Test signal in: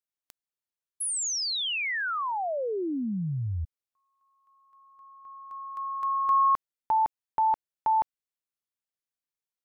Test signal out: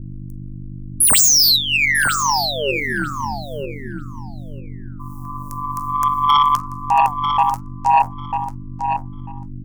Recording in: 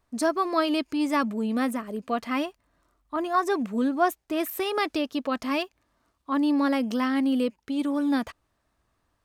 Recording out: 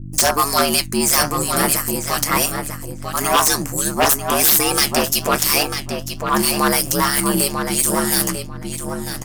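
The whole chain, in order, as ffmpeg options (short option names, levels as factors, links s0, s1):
-filter_complex "[0:a]highpass=f=1200:p=1,agate=range=0.0178:threshold=0.00126:ratio=16:release=61:detection=peak,acrossover=split=5100[s0][s1];[s1]acompressor=threshold=0.00562:ratio=4:attack=1:release=60[s2];[s0][s2]amix=inputs=2:normalize=0,acrossover=split=2000[s3][s4];[s3]aeval=exprs='val(0)*(1-0.7/2+0.7/2*cos(2*PI*3*n/s))':c=same[s5];[s4]aeval=exprs='val(0)*(1-0.7/2-0.7/2*cos(2*PI*3*n/s))':c=same[s6];[s5][s6]amix=inputs=2:normalize=0,flanger=delay=6.9:depth=6.1:regen=66:speed=1.3:shape=triangular,aexciter=amount=12.3:drive=6:freq=5400,aeval=exprs='val(0)+0.00251*(sin(2*PI*50*n/s)+sin(2*PI*2*50*n/s)/2+sin(2*PI*3*50*n/s)/3+sin(2*PI*4*50*n/s)/4+sin(2*PI*5*50*n/s)/5)':c=same,aeval=exprs='val(0)*sin(2*PI*72*n/s)':c=same,aeval=exprs='0.168*sin(PI/2*5.62*val(0)/0.168)':c=same,asplit=2[s7][s8];[s8]adelay=945,lowpass=f=4600:p=1,volume=0.501,asplit=2[s9][s10];[s10]adelay=945,lowpass=f=4600:p=1,volume=0.17,asplit=2[s11][s12];[s12]adelay=945,lowpass=f=4600:p=1,volume=0.17[s13];[s7][s9][s11][s13]amix=inputs=4:normalize=0,volume=2.11"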